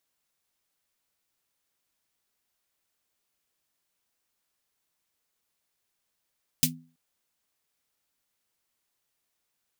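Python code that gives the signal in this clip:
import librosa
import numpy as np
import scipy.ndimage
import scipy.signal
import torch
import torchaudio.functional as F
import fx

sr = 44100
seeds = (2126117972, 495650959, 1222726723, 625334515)

y = fx.drum_snare(sr, seeds[0], length_s=0.33, hz=160.0, second_hz=250.0, noise_db=11.0, noise_from_hz=2600.0, decay_s=0.4, noise_decay_s=0.11)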